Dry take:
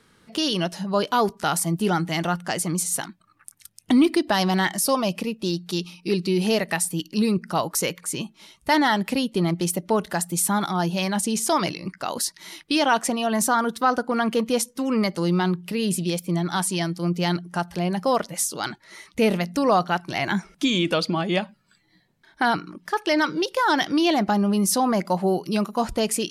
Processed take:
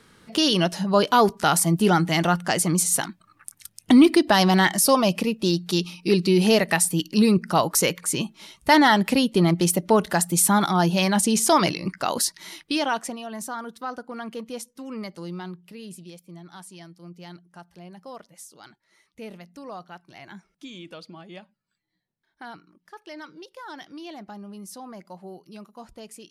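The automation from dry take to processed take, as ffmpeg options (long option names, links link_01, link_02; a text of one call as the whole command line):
ffmpeg -i in.wav -af "volume=3.5dB,afade=type=out:start_time=12.08:duration=0.74:silence=0.421697,afade=type=out:start_time=12.82:duration=0.43:silence=0.398107,afade=type=out:start_time=15.16:duration=1.04:silence=0.446684" out.wav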